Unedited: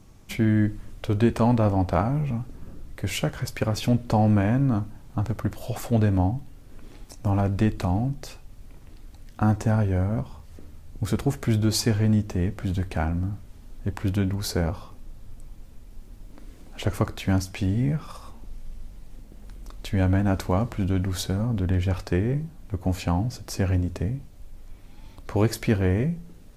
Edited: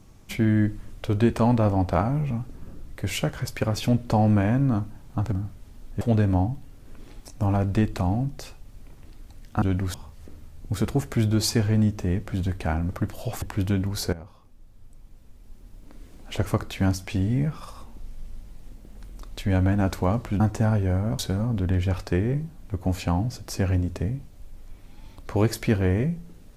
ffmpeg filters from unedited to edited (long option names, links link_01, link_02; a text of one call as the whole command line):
ffmpeg -i in.wav -filter_complex "[0:a]asplit=10[link_01][link_02][link_03][link_04][link_05][link_06][link_07][link_08][link_09][link_10];[link_01]atrim=end=5.322[link_11];[link_02]atrim=start=13.198:end=13.892[link_12];[link_03]atrim=start=5.848:end=9.462[link_13];[link_04]atrim=start=20.868:end=21.192[link_14];[link_05]atrim=start=10.248:end=13.202[link_15];[link_06]atrim=start=5.318:end=5.852[link_16];[link_07]atrim=start=13.888:end=14.6,asetpts=PTS-STARTPTS,afade=type=out:start_time=0.708:duration=0.004:curve=hsin:silence=0.158489[link_17];[link_08]atrim=start=14.6:end=20.872,asetpts=PTS-STARTPTS,afade=type=in:duration=2.23:silence=0.158489[link_18];[link_09]atrim=start=9.458:end=10.252[link_19];[link_10]atrim=start=21.188[link_20];[link_11][link_12]acrossfade=duration=0.004:curve1=hsin:curve2=hsin[link_21];[link_21][link_13]acrossfade=duration=0.004:curve1=hsin:curve2=hsin[link_22];[link_22][link_14]acrossfade=duration=0.004:curve1=hsin:curve2=hsin[link_23];[link_23][link_15]acrossfade=duration=0.004:curve1=hsin:curve2=hsin[link_24];[link_24][link_16]acrossfade=duration=0.004:curve1=hsin:curve2=hsin[link_25];[link_17][link_18]concat=n=2:v=0:a=1[link_26];[link_25][link_26]acrossfade=duration=0.004:curve1=hsin:curve2=hsin[link_27];[link_27][link_19]acrossfade=duration=0.004:curve1=hsin:curve2=hsin[link_28];[link_28][link_20]acrossfade=duration=0.004:curve1=hsin:curve2=hsin" out.wav